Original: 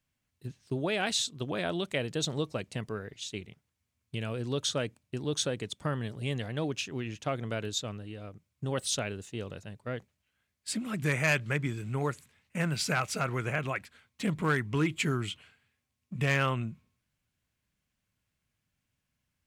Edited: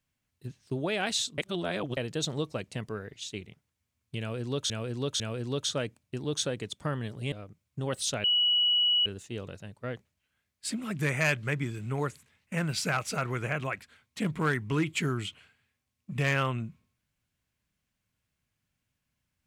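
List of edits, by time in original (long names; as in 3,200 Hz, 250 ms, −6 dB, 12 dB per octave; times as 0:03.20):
0:01.38–0:01.97: reverse
0:04.20–0:04.70: repeat, 3 plays
0:06.32–0:08.17: remove
0:09.09: insert tone 2,930 Hz −21.5 dBFS 0.82 s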